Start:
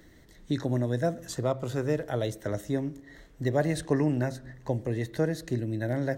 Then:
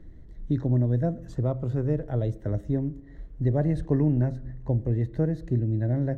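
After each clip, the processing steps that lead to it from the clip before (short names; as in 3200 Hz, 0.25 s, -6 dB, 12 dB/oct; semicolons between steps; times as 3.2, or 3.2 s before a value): tilt -4.5 dB/oct; gain -6.5 dB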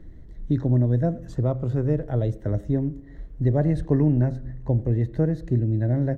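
speakerphone echo 90 ms, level -24 dB; gain +3 dB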